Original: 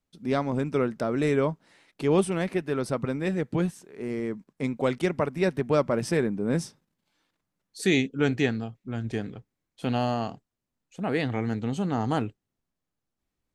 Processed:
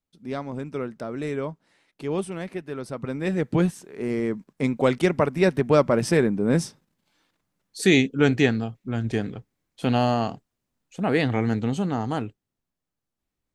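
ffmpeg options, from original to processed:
ffmpeg -i in.wav -af "volume=5dB,afade=type=in:start_time=2.94:duration=0.6:silence=0.316228,afade=type=out:start_time=11.58:duration=0.5:silence=0.501187" out.wav

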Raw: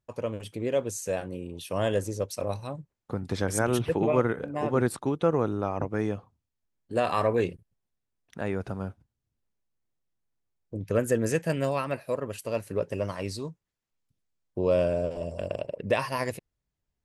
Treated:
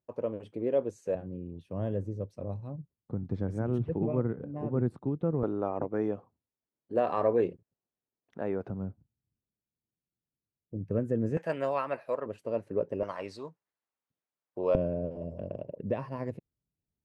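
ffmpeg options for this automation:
ffmpeg -i in.wav -af "asetnsamples=nb_out_samples=441:pad=0,asendcmd='1.15 bandpass f 140;5.43 bandpass f 440;8.7 bandpass f 170;11.37 bandpass f 880;12.26 bandpass f 360;13.03 bandpass f 940;14.75 bandpass f 190',bandpass=frequency=400:width_type=q:width=0.73:csg=0" out.wav

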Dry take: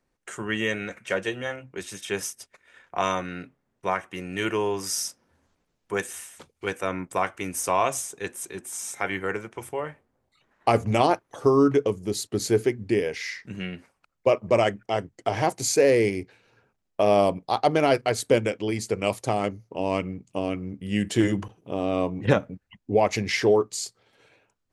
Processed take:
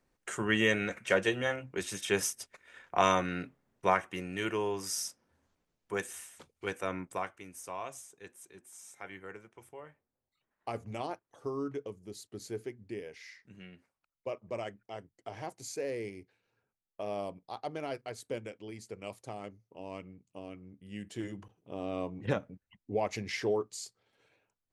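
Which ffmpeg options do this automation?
ffmpeg -i in.wav -af "volume=6dB,afade=type=out:start_time=3.9:duration=0.5:silence=0.473151,afade=type=out:start_time=6.97:duration=0.47:silence=0.298538,afade=type=in:start_time=21.37:duration=0.45:silence=0.473151" out.wav

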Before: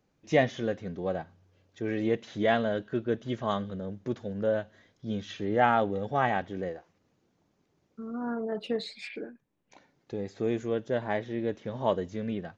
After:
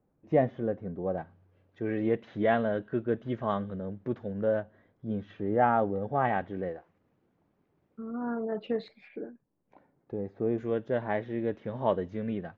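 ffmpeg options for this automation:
ffmpeg -i in.wav -af "asetnsamples=nb_out_samples=441:pad=0,asendcmd='1.18 lowpass f 2000;4.6 lowpass f 1300;6.25 lowpass f 2100;8.88 lowpass f 1100;10.58 lowpass f 2400',lowpass=1000" out.wav

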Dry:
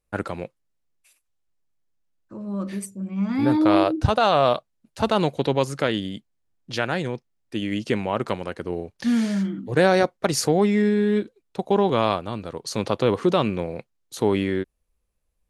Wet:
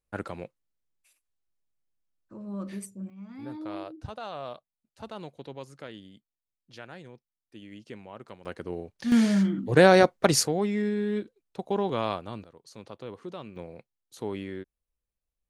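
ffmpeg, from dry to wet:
ffmpeg -i in.wav -af "asetnsamples=nb_out_samples=441:pad=0,asendcmd='3.1 volume volume -19.5dB;8.45 volume volume -6.5dB;9.12 volume volume 1dB;10.43 volume volume -8dB;12.44 volume volume -20dB;13.56 volume volume -13dB',volume=-7dB" out.wav

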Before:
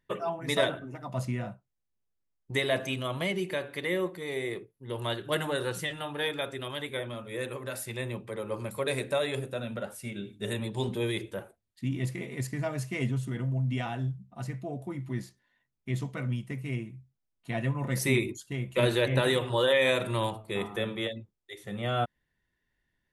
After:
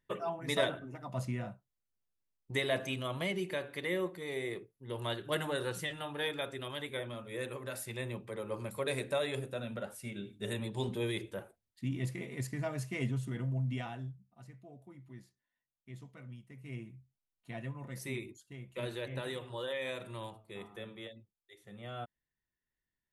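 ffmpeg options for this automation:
ffmpeg -i in.wav -af "volume=5.5dB,afade=type=out:start_time=13.61:duration=0.67:silence=0.237137,afade=type=in:start_time=16.53:duration=0.37:silence=0.316228,afade=type=out:start_time=16.9:duration=1.03:silence=0.446684" out.wav

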